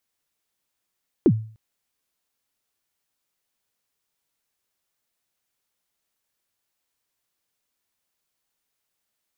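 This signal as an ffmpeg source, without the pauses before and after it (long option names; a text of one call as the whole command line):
ffmpeg -f lavfi -i "aevalsrc='0.355*pow(10,-3*t/0.44)*sin(2*PI*(410*0.06/log(110/410)*(exp(log(110/410)*min(t,0.06)/0.06)-1)+110*max(t-0.06,0)))':duration=0.3:sample_rate=44100" out.wav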